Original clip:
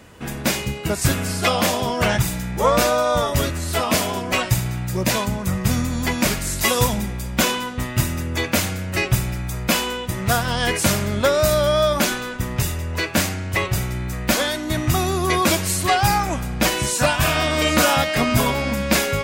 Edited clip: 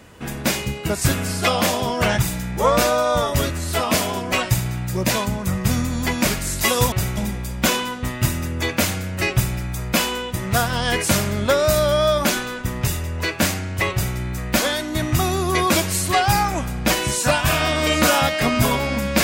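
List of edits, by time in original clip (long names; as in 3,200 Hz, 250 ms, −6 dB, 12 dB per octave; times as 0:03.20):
0:13.67–0:13.92: duplicate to 0:06.92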